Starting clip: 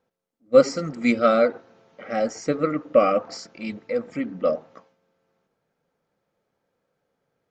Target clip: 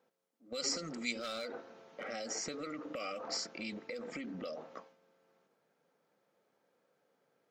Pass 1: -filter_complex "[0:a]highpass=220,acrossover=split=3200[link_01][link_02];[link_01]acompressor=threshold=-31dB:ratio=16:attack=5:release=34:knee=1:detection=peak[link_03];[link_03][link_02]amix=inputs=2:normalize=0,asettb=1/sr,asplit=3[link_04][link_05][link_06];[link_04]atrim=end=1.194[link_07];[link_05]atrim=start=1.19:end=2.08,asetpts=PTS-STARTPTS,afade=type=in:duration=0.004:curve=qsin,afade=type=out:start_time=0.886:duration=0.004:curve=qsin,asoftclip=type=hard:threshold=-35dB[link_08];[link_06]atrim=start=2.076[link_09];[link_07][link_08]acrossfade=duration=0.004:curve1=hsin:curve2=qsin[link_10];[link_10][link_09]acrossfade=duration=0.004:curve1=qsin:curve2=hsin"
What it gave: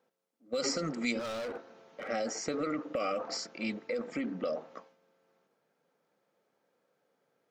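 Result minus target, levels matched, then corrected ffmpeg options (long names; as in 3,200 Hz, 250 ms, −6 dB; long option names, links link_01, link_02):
downward compressor: peak gain reduction −9.5 dB
-filter_complex "[0:a]highpass=220,acrossover=split=3200[link_01][link_02];[link_01]acompressor=threshold=-41dB:ratio=16:attack=5:release=34:knee=1:detection=peak[link_03];[link_03][link_02]amix=inputs=2:normalize=0,asettb=1/sr,asplit=3[link_04][link_05][link_06];[link_04]atrim=end=1.194[link_07];[link_05]atrim=start=1.19:end=2.08,asetpts=PTS-STARTPTS,afade=type=in:duration=0.004:curve=qsin,afade=type=out:start_time=0.886:duration=0.004:curve=qsin,asoftclip=type=hard:threshold=-35dB[link_08];[link_06]atrim=start=2.076[link_09];[link_07][link_08]acrossfade=duration=0.004:curve1=hsin:curve2=qsin[link_10];[link_10][link_09]acrossfade=duration=0.004:curve1=qsin:curve2=hsin"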